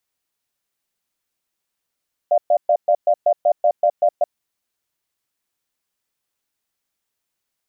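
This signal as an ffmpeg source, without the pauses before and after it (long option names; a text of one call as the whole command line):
ffmpeg -f lavfi -i "aevalsrc='0.188*(sin(2*PI*599*t)+sin(2*PI*692*t))*clip(min(mod(t,0.19),0.07-mod(t,0.19))/0.005,0,1)':duration=1.93:sample_rate=44100" out.wav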